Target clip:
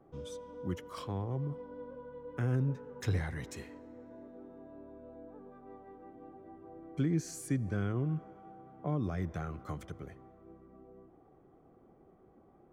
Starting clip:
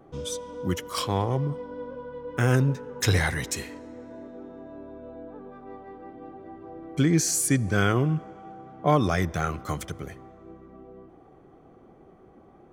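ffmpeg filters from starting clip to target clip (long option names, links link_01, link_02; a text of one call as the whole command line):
ffmpeg -i in.wav -filter_complex "[0:a]highshelf=frequency=2700:gain=-11.5,acrossover=split=350[link_01][link_02];[link_02]acompressor=threshold=-32dB:ratio=5[link_03];[link_01][link_03]amix=inputs=2:normalize=0,volume=-8.5dB" out.wav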